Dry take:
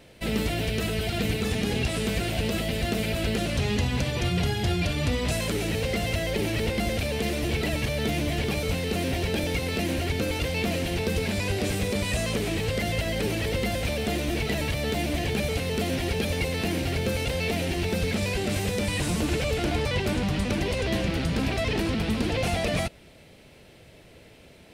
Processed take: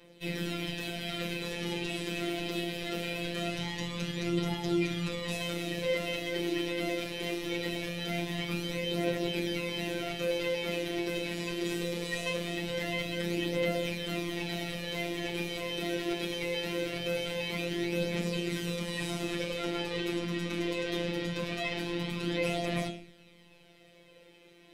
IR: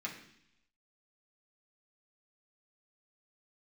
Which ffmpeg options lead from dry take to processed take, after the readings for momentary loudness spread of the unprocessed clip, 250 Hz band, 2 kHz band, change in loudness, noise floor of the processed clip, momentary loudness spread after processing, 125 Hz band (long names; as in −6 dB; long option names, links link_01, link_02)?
1 LU, −5.5 dB, −5.0 dB, −6.5 dB, −58 dBFS, 4 LU, −11.0 dB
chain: -filter_complex "[1:a]atrim=start_sample=2205,asetrate=66150,aresample=44100[link_01];[0:a][link_01]afir=irnorm=-1:irlink=0,aphaser=in_gain=1:out_gain=1:delay=3.2:decay=0.38:speed=0.22:type=triangular,afftfilt=real='hypot(re,im)*cos(PI*b)':imag='0':win_size=1024:overlap=0.75"